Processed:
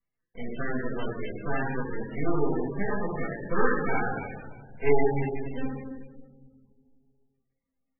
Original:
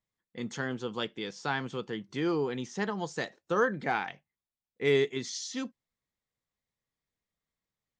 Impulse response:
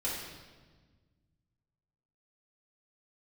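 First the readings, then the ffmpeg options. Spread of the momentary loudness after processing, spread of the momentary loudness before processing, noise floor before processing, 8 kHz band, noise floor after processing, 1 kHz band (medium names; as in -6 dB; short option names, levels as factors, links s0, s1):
14 LU, 12 LU, under -85 dBFS, under -35 dB, -83 dBFS, +2.5 dB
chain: -filter_complex "[0:a]bandreject=f=80.95:t=h:w=4,bandreject=f=161.9:t=h:w=4,bandreject=f=242.85:t=h:w=4,bandreject=f=323.8:t=h:w=4,aeval=exprs='max(val(0),0)':c=same[s0];[1:a]atrim=start_sample=2205,asetrate=38808,aresample=44100[s1];[s0][s1]afir=irnorm=-1:irlink=0" -ar 22050 -c:a libmp3lame -b:a 8k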